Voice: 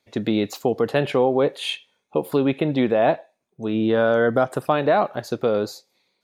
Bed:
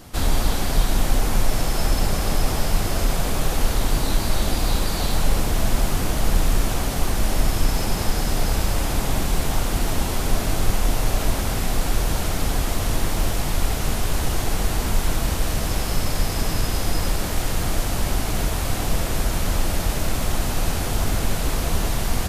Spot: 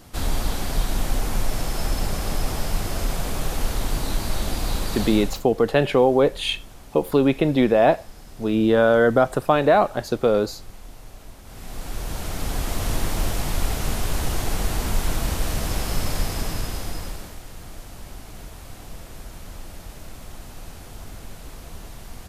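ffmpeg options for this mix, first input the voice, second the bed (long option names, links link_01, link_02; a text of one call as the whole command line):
ffmpeg -i stem1.wav -i stem2.wav -filter_complex "[0:a]adelay=4800,volume=2dB[link_01];[1:a]volume=15.5dB,afade=type=out:start_time=5.01:duration=0.43:silence=0.133352,afade=type=in:start_time=11.43:duration=1.46:silence=0.105925,afade=type=out:start_time=16.13:duration=1.27:silence=0.188365[link_02];[link_01][link_02]amix=inputs=2:normalize=0" out.wav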